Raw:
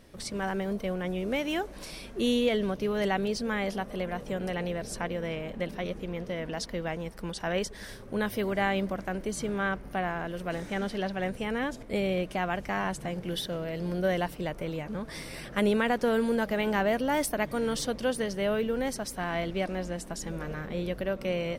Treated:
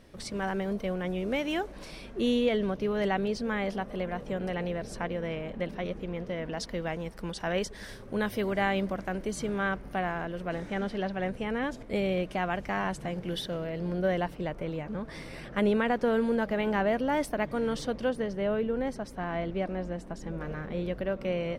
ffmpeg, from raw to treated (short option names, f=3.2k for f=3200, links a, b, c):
-af "asetnsamples=n=441:p=0,asendcmd='1.72 lowpass f 3200;6.6 lowpass f 7400;10.25 lowpass f 2800;11.64 lowpass f 5000;13.67 lowpass f 2400;18.09 lowpass f 1300;20.41 lowpass f 2400',lowpass=f=6k:p=1"